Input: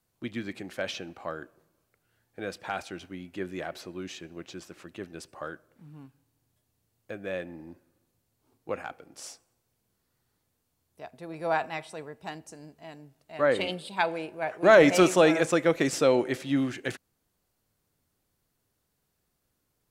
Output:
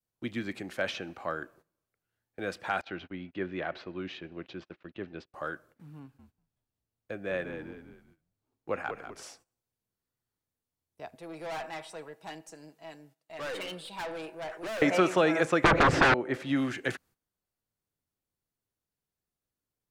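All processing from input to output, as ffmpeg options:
-filter_complex "[0:a]asettb=1/sr,asplit=3[a][b][c];[a]atrim=end=2.814[d];[b]atrim=start=2.81:end=5.34,asetpts=PTS-STARTPTS,afade=t=in:d=0.004:c=qsin,afade=t=out:st=2.526:d=0.004:c=qsin,lowpass=f=3.9k:w=0.5412,lowpass=f=3.9k:w=1.3066,agate=range=-28dB:threshold=-51dB:ratio=16:release=100:detection=peak[e];[c]atrim=start=5.336[f];[d][e]acrossfade=d=0.004:c1=hsin:c2=qsin[g];[g][f]acrossfade=d=0.004:c1=qsin:c2=hsin,asettb=1/sr,asplit=3[h][i][j];[h]atrim=end=5.994[k];[i]atrim=start=5.99:end=9.23,asetpts=PTS-STARTPTS,afade=t=in:d=0.004:c=qsin,afade=t=out:st=3.236:d=0.004:c=qsin,highshelf=f=5.8k:g=-6.5,asplit=5[l][m][n][o][p];[m]adelay=194,afreqshift=-53,volume=-9dB[q];[n]adelay=388,afreqshift=-106,volume=-17dB[r];[o]adelay=582,afreqshift=-159,volume=-24.9dB[s];[p]adelay=776,afreqshift=-212,volume=-32.9dB[t];[l][q][r][s][t]amix=inputs=5:normalize=0,atrim=end_sample=142884[u];[j]atrim=start=9.226[v];[k][u]acrossfade=d=0.004:c1=hsin:c2=qsin[w];[w][v]acrossfade=d=0.004:c1=qsin:c2=hsin,asettb=1/sr,asplit=3[x][y][z];[x]atrim=end=11.154[aa];[y]atrim=start=11.15:end=14.82,asetpts=PTS-STARTPTS,afade=t=in:d=0.004:c=qsin,afade=t=out:st=3.666:d=0.004:c=qsin,highpass=f=430:p=1,aecho=1:1:6.2:0.45,atrim=end_sample=161847,aeval=exprs='(tanh(56.2*val(0)+0.2)-tanh(0.2))/56.2':c=same[ab];[z]atrim=start=14.816[ac];[aa][ab]acrossfade=d=0.004:c1=hsin:c2=qsin[ad];[ad][ac]acrossfade=d=0.004:c1=qsin:c2=hsin,asettb=1/sr,asplit=3[ae][af][ag];[ae]atrim=end=15.644[ah];[af]atrim=start=15.64:end=16.14,asetpts=PTS-STARTPTS,afade=t=in:d=0.004:c=qsin,afade=t=out:st=0.496:d=0.004:c=qsin,aemphasis=mode=reproduction:type=riaa,aeval=exprs='0.398*sin(PI/2*7.94*val(0)/0.398)':c=same[ai];[ag]atrim=start=16.136[aj];[ah][ai]acrossfade=d=0.004:c1=hsin:c2=qsin[ak];[ak][aj]acrossfade=d=0.004:c1=qsin:c2=hsin,acrossover=split=370|1700|4100[al][am][an][ao];[al]acompressor=threshold=-28dB:ratio=4[ap];[am]acompressor=threshold=-26dB:ratio=4[aq];[an]acompressor=threshold=-38dB:ratio=4[ar];[ao]acompressor=threshold=-49dB:ratio=4[as];[ap][aq][ar][as]amix=inputs=4:normalize=0,agate=range=-14dB:threshold=-59dB:ratio=16:detection=peak,adynamicequalizer=threshold=0.00891:dfrequency=1500:dqfactor=0.99:tfrequency=1500:tqfactor=0.99:attack=5:release=100:ratio=0.375:range=2.5:mode=boostabove:tftype=bell"

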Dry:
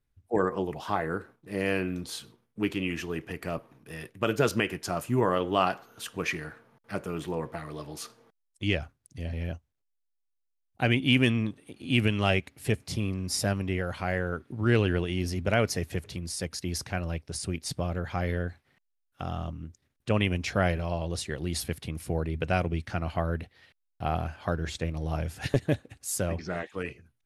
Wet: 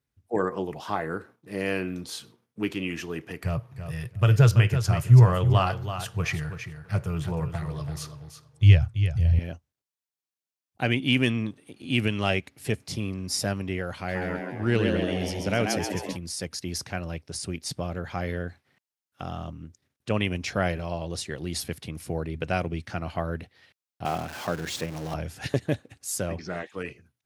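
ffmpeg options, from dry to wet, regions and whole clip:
-filter_complex "[0:a]asettb=1/sr,asplit=3[a][b][c];[a]atrim=end=3.434[d];[b]atrim=start=3.43:end=9.39,asetpts=PTS-STARTPTS,afade=t=in:d=0.004:c=qsin,afade=t=out:st=5.956:d=0.004:c=qsin,lowshelf=f=170:t=q:w=3:g=13.5,aecho=1:1:331|662:0.335|0.0502,atrim=end_sample=262836[e];[c]atrim=start=9.386[f];[d][e]acrossfade=d=0.004:c1=hsin:c2=qsin[g];[g][f]acrossfade=d=0.004:c1=qsin:c2=hsin,asettb=1/sr,asplit=3[h][i][j];[h]atrim=end=13.954[k];[i]atrim=start=13.95:end=16.17,asetpts=PTS-STARTPTS,afade=t=in:d=0.004:c=qsin,afade=t=out:st=2.216:d=0.004:c=qsin,equalizer=f=1k:t=o:w=1.7:g=-3,asplit=8[l][m][n][o][p][q][r][s];[m]adelay=134,afreqshift=98,volume=-4.5dB[t];[n]adelay=268,afreqshift=196,volume=-10dB[u];[o]adelay=402,afreqshift=294,volume=-15.5dB[v];[p]adelay=536,afreqshift=392,volume=-21dB[w];[q]adelay=670,afreqshift=490,volume=-26.6dB[x];[r]adelay=804,afreqshift=588,volume=-32.1dB[y];[s]adelay=938,afreqshift=686,volume=-37.6dB[z];[l][t][u][v][w][x][y][z]amix=inputs=8:normalize=0,atrim=end_sample=97902[aa];[j]atrim=start=16.166[ab];[k][aa]acrossfade=d=0.004:c1=hsin:c2=qsin[ac];[ac][ab]acrossfade=d=0.004:c1=qsin:c2=hsin,asettb=1/sr,asplit=3[ad][ae][af];[ad]atrim=end=24.054[ag];[ae]atrim=start=24.05:end=25.14,asetpts=PTS-STARTPTS,afade=t=in:d=0.004:c=qsin,afade=t=out:st=1.086:d=0.004:c=qsin,aeval=exprs='val(0)+0.5*0.0211*sgn(val(0))':c=same,highpass=140[ah];[af]atrim=start=25.136[ai];[ag][ah]acrossfade=d=0.004:c1=hsin:c2=qsin[aj];[aj][ai]acrossfade=d=0.004:c1=qsin:c2=hsin,highpass=86,equalizer=f=5.5k:t=o:w=0.77:g=2.5"

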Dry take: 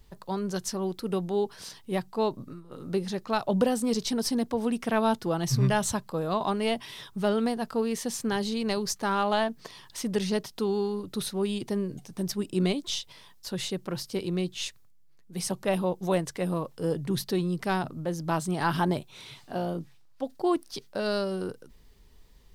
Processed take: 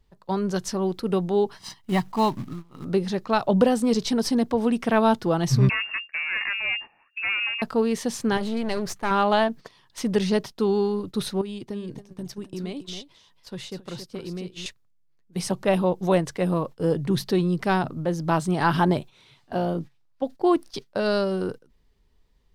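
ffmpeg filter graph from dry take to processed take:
-filter_complex "[0:a]asettb=1/sr,asplit=3[a][b][c];[a]atrim=end=1.564[d];[b]atrim=start=1.56:end=2.85,asetpts=PTS-STARTPTS,afade=t=in:d=0.004:c=qsin,afade=t=out:st=1.286:d=0.004:c=qsin,aecho=1:1:1:0.7,atrim=end_sample=56889,acrusher=bits=4:mode=log:mix=0:aa=0.000001[e];[c]atrim=start=2.846[f];[d][e]acrossfade=d=0.004:c1=hsin:c2=qsin[g];[g][f]acrossfade=d=0.004:c1=qsin:c2=hsin,asettb=1/sr,asplit=3[h][i][j];[h]atrim=end=5.694[k];[i]atrim=start=5.69:end=7.62,asetpts=PTS-STARTPTS,afade=t=in:d=0.004:c=qsin,afade=t=out:st=1.926:d=0.004:c=qsin,aemphasis=mode=reproduction:type=75fm,aeval=exprs='(tanh(22.4*val(0)+0.75)-tanh(0.75))/22.4':c=same,lowpass=f=2.4k:t=q:w=0.5098,lowpass=f=2.4k:t=q:w=0.6013,lowpass=f=2.4k:t=q:w=0.9,lowpass=f=2.4k:t=q:w=2.563,afreqshift=-2800[l];[j]atrim=start=7.616[m];[k][l]acrossfade=d=0.004:c1=hsin:c2=qsin[n];[n][m]acrossfade=d=0.004:c1=qsin:c2=hsin,asettb=1/sr,asplit=3[o][p][q];[o]atrim=end=8.374[r];[p]atrim=start=8.37:end=9.11,asetpts=PTS-STARTPTS,afade=t=in:d=0.004:c=qsin,afade=t=out:st=0.736:d=0.004:c=qsin,equalizer=f=4.9k:w=1.6:g=-6.5,aeval=exprs='clip(val(0),-1,0.0133)':c=same[s];[q]atrim=start=9.106[t];[r][s]acrossfade=d=0.004:c1=hsin:c2=qsin[u];[u][t]acrossfade=d=0.004:c1=qsin:c2=hsin,asettb=1/sr,asplit=3[v][w][x];[v]atrim=end=11.414[y];[w]atrim=start=11.41:end=14.66,asetpts=PTS-STARTPTS,afade=t=in:d=0.004:c=qsin,afade=t=out:st=3.246:d=0.004:c=qsin,acompressor=threshold=-37dB:ratio=4:attack=3.2:release=140:knee=1:detection=peak,aecho=1:1:274:0.422,atrim=end_sample=143325[z];[x]atrim=start=14.656[aa];[y][z]acrossfade=d=0.004:c1=hsin:c2=qsin[ab];[ab][aa]acrossfade=d=0.004:c1=qsin:c2=hsin,agate=range=-13dB:threshold=-40dB:ratio=16:detection=peak,highshelf=f=6.4k:g=-10,volume=5.5dB"

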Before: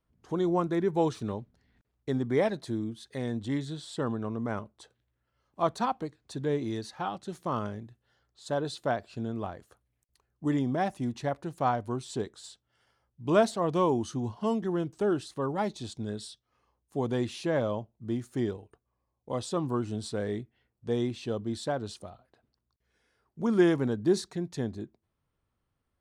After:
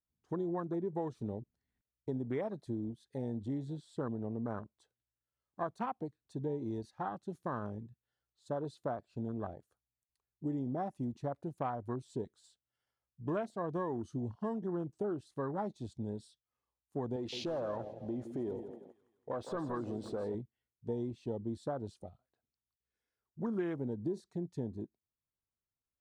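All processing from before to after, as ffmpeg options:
-filter_complex "[0:a]asettb=1/sr,asplit=3[a][b][c];[a]atrim=end=17.164[d];[b]atrim=start=17.16:end=20.35,asetpts=PTS-STARTPTS,afade=t=in:d=0.004:c=qsin,afade=t=out:st=3.186:d=0.004:c=qsin,acompressor=threshold=-34dB:ratio=2.5:attack=3.2:release=140:knee=1:detection=peak,asplit=2[e][f];[f]highpass=f=720:p=1,volume=18dB,asoftclip=type=tanh:threshold=-22dB[g];[e][g]amix=inputs=2:normalize=0,lowpass=f=2.4k:p=1,volume=-6dB,aecho=1:1:165|330|495|660|825|990:0.316|0.168|0.0888|0.0471|0.025|0.0132,atrim=end_sample=140679[h];[c]atrim=start=20.346[i];[d][h]acrossfade=d=0.004:c1=hsin:c2=qsin[j];[j][i]acrossfade=d=0.004:c1=qsin:c2=hsin,highshelf=f=7.1k:g=4.5,afwtdn=0.0158,acompressor=threshold=-30dB:ratio=6,volume=-3dB"

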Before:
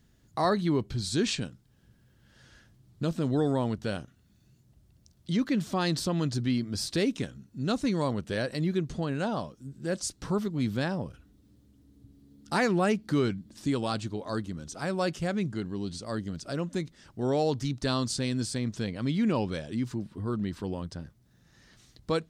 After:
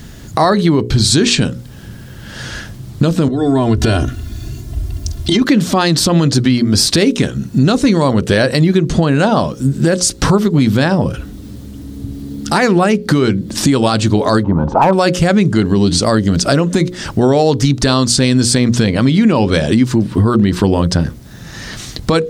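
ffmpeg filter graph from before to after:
-filter_complex "[0:a]asettb=1/sr,asplit=3[a][b][c];[a]atrim=end=3.284[d];[b]atrim=start=3.28:end=5.42,asetpts=PTS-STARTPTS,afade=t=in:d=0.004:c=qsin,afade=t=out:st=2.136:d=0.004:c=qsin,lowshelf=f=150:g=10.5,aecho=1:1:2.9:1,atrim=end_sample=94374,acompressor=threshold=-35dB:ratio=8:attack=3.2:release=140:knee=1:detection=peak[e];[c]atrim=start=5.416[f];[d][e]acrossfade=d=0.004:c1=hsin:c2=qsin[g];[g][f]acrossfade=d=0.004:c1=qsin:c2=hsin,asettb=1/sr,asplit=3[h][i][j];[h]atrim=end=14.434[k];[i]atrim=start=14.43:end=14.93,asetpts=PTS-STARTPTS,afade=t=in:d=0.004:c=qsin,afade=t=out:st=0.496:d=0.004:c=qsin,lowpass=f=910:t=q:w=9.2,asoftclip=type=hard:threshold=-23dB[l];[j]atrim=start=14.926[m];[k][l]acrossfade=d=0.004:c1=hsin:c2=qsin[n];[n][m]acrossfade=d=0.004:c1=qsin:c2=hsin,bandreject=f=60:t=h:w=6,bandreject=f=120:t=h:w=6,bandreject=f=180:t=h:w=6,bandreject=f=240:t=h:w=6,bandreject=f=300:t=h:w=6,bandreject=f=360:t=h:w=6,bandreject=f=420:t=h:w=6,bandreject=f=480:t=h:w=6,bandreject=f=540:t=h:w=6,acompressor=threshold=-39dB:ratio=6,alimiter=level_in=31.5dB:limit=-1dB:release=50:level=0:latency=1,volume=-1dB"

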